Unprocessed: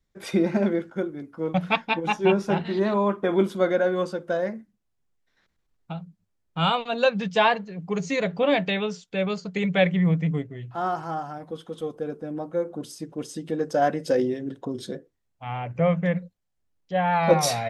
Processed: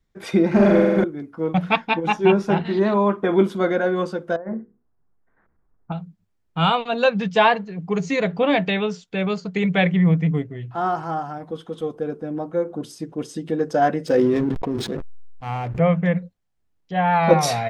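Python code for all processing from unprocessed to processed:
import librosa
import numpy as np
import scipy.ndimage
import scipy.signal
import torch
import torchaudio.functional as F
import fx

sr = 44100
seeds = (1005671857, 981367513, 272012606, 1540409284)

y = fx.chain(x, sr, fx.room_flutter(wall_m=7.8, rt60_s=1.5),
    fx.leveller(passes=1), at=(0.51, 1.04))
y = fx.chain(y, sr, fx.lowpass(hz=1500.0, slope=24),
    fx.hum_notches(base_hz=60, count=8),
    fx.over_compress(threshold_db=-33.0, ratio=-1.0), at=(4.36, 5.92))
y = fx.chain(y, sr, fx.high_shelf(hz=8700.0, db=3.5),
    fx.backlash(play_db=-37.5),
    fx.sustainer(db_per_s=21.0), at=(14.07, 15.79))
y = fx.high_shelf(y, sr, hz=4400.0, db=-7.0)
y = fx.notch(y, sr, hz=560.0, q=12.0)
y = y * librosa.db_to_amplitude(4.5)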